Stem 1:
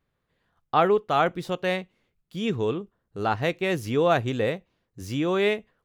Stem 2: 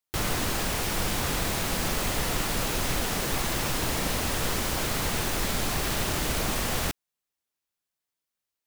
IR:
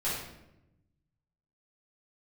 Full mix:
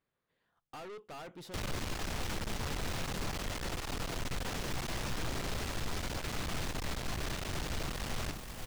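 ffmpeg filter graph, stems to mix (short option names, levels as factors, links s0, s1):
-filter_complex "[0:a]lowshelf=f=130:g=-12,acompressor=threshold=0.0708:ratio=6,asoftclip=type=tanh:threshold=0.0133,volume=0.631[s0];[1:a]acrossover=split=170[s1][s2];[s2]acompressor=threshold=0.0178:ratio=2[s3];[s1][s3]amix=inputs=2:normalize=0,adelay=1400,volume=1.12,asplit=2[s4][s5];[s5]volume=0.282,aecho=0:1:479:1[s6];[s0][s4][s6]amix=inputs=3:normalize=0,acrossover=split=7100[s7][s8];[s8]acompressor=threshold=0.00447:ratio=4:attack=1:release=60[s9];[s7][s9]amix=inputs=2:normalize=0,aeval=exprs='(tanh(50.1*val(0)+0.5)-tanh(0.5))/50.1':c=same"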